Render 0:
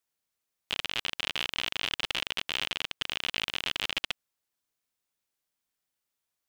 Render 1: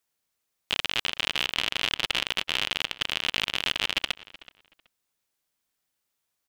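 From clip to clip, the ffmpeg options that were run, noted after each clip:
-filter_complex "[0:a]asplit=2[a][b];[b]adelay=376,lowpass=f=3.4k:p=1,volume=-18dB,asplit=2[c][d];[d]adelay=376,lowpass=f=3.4k:p=1,volume=0.21[e];[a][c][e]amix=inputs=3:normalize=0,volume=4.5dB"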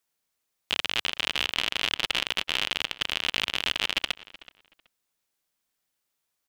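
-af "equalizer=f=92:w=1.3:g=-3"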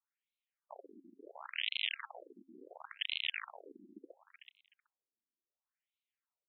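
-af "bandreject=f=269:t=h:w=4,bandreject=f=538:t=h:w=4,bandreject=f=807:t=h:w=4,bandreject=f=1.076k:t=h:w=4,bandreject=f=1.345k:t=h:w=4,bandreject=f=1.614k:t=h:w=4,afftfilt=real='re*between(b*sr/1024,250*pow(3000/250,0.5+0.5*sin(2*PI*0.71*pts/sr))/1.41,250*pow(3000/250,0.5+0.5*sin(2*PI*0.71*pts/sr))*1.41)':imag='im*between(b*sr/1024,250*pow(3000/250,0.5+0.5*sin(2*PI*0.71*pts/sr))/1.41,250*pow(3000/250,0.5+0.5*sin(2*PI*0.71*pts/sr))*1.41)':win_size=1024:overlap=0.75,volume=-7dB"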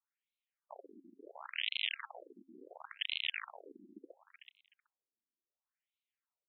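-af anull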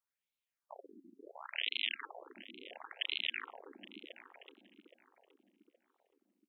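-filter_complex "[0:a]asplit=2[a][b];[b]adelay=821,lowpass=f=910:p=1,volume=-7.5dB,asplit=2[c][d];[d]adelay=821,lowpass=f=910:p=1,volume=0.49,asplit=2[e][f];[f]adelay=821,lowpass=f=910:p=1,volume=0.49,asplit=2[g][h];[h]adelay=821,lowpass=f=910:p=1,volume=0.49,asplit=2[i][j];[j]adelay=821,lowpass=f=910:p=1,volume=0.49,asplit=2[k][l];[l]adelay=821,lowpass=f=910:p=1,volume=0.49[m];[a][c][e][g][i][k][m]amix=inputs=7:normalize=0"

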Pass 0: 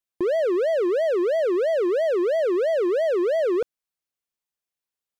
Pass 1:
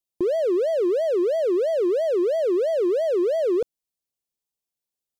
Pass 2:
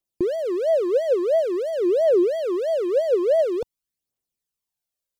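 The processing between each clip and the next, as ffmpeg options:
-af "equalizer=f=1.6k:t=o:w=1.5:g=-12.5,volume=2dB"
-af "aphaser=in_gain=1:out_gain=1:delay=2.1:decay=0.5:speed=0.48:type=triangular"

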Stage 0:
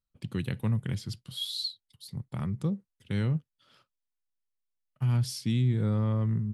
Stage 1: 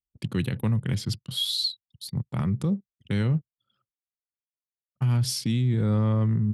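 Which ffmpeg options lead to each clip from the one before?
-af "anlmdn=0.00158,highpass=73,alimiter=level_in=2dB:limit=-24dB:level=0:latency=1:release=63,volume=-2dB,volume=8.5dB"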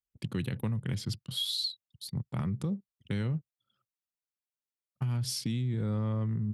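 -af "acompressor=threshold=-24dB:ratio=6,volume=-4dB"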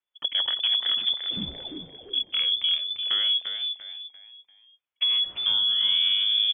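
-filter_complex "[0:a]asplit=2[a][b];[b]asplit=4[c][d][e][f];[c]adelay=344,afreqshift=-100,volume=-6.5dB[g];[d]adelay=688,afreqshift=-200,volume=-15.6dB[h];[e]adelay=1032,afreqshift=-300,volume=-24.7dB[i];[f]adelay=1376,afreqshift=-400,volume=-33.9dB[j];[g][h][i][j]amix=inputs=4:normalize=0[k];[a][k]amix=inputs=2:normalize=0,lowpass=f=3k:t=q:w=0.5098,lowpass=f=3k:t=q:w=0.6013,lowpass=f=3k:t=q:w=0.9,lowpass=f=3k:t=q:w=2.563,afreqshift=-3500,volume=7dB"

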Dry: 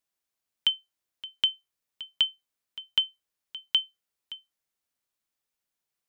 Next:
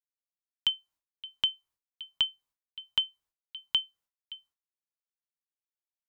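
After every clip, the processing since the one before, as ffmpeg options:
-af "lowshelf=f=120:g=11,agate=range=-33dB:threshold=-56dB:ratio=3:detection=peak,equalizer=f=1k:w=2.4:g=8,volume=-3dB"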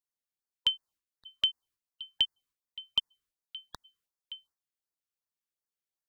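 -af "afftfilt=real='re*(1-between(b*sr/1024,650*pow(3100/650,0.5+0.5*sin(2*PI*2.7*pts/sr))/1.41,650*pow(3100/650,0.5+0.5*sin(2*PI*2.7*pts/sr))*1.41))':imag='im*(1-between(b*sr/1024,650*pow(3100/650,0.5+0.5*sin(2*PI*2.7*pts/sr))/1.41,650*pow(3100/650,0.5+0.5*sin(2*PI*2.7*pts/sr))*1.41))':win_size=1024:overlap=0.75"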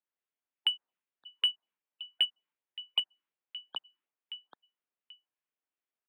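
-filter_complex "[0:a]aecho=1:1:785:0.316,highpass=f=350:t=q:w=0.5412,highpass=f=350:t=q:w=1.307,lowpass=f=3.2k:t=q:w=0.5176,lowpass=f=3.2k:t=q:w=0.7071,lowpass=f=3.2k:t=q:w=1.932,afreqshift=-120,asplit=2[a][b];[b]asoftclip=type=tanh:threshold=-32dB,volume=-12dB[c];[a][c]amix=inputs=2:normalize=0"

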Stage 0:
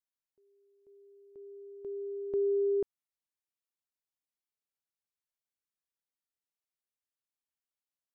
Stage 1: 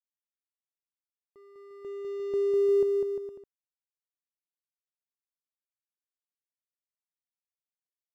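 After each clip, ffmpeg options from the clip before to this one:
-af "aeval=exprs='sgn(val(0))*max(abs(val(0))-0.00211,0)':c=same,aecho=1:1:200|350|462.5|546.9|610.2:0.631|0.398|0.251|0.158|0.1"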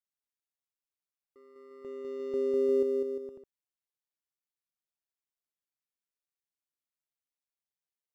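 -af "tremolo=f=140:d=0.667"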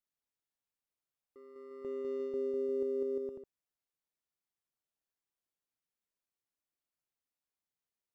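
-af "tiltshelf=f=1.4k:g=3,areverse,acompressor=threshold=-32dB:ratio=6,areverse"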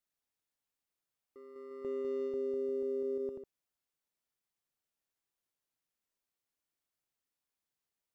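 -af "alimiter=level_in=7dB:limit=-24dB:level=0:latency=1:release=27,volume=-7dB,volume=2dB"

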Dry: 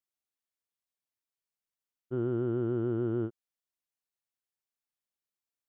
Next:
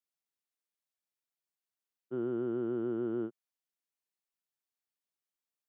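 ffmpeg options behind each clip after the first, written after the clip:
-af "highpass=f=160:w=0.5412,highpass=f=160:w=1.3066,volume=-2.5dB"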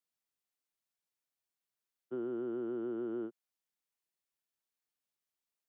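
-filter_complex "[0:a]acrossover=split=210|580[a][b][c];[a]acompressor=threshold=-60dB:ratio=4[d];[b]acompressor=threshold=-36dB:ratio=4[e];[c]acompressor=threshold=-51dB:ratio=4[f];[d][e][f]amix=inputs=3:normalize=0"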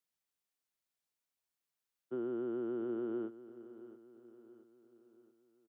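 -af "aecho=1:1:677|1354|2031|2708:0.168|0.0806|0.0387|0.0186"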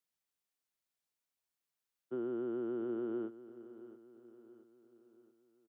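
-af anull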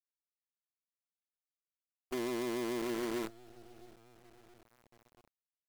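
-af "acrusher=bits=7:dc=4:mix=0:aa=0.000001"

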